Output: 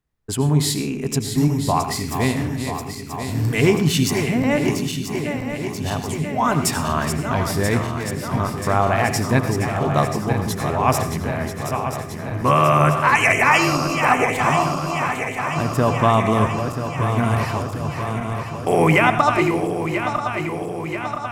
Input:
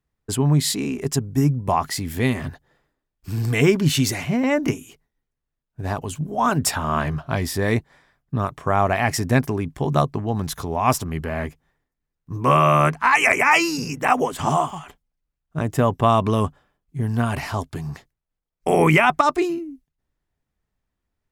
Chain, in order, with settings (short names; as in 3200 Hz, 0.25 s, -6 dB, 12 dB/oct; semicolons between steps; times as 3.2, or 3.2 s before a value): regenerating reverse delay 0.492 s, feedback 80%, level -8 dB; on a send: reverb RT60 0.50 s, pre-delay 81 ms, DRR 9.5 dB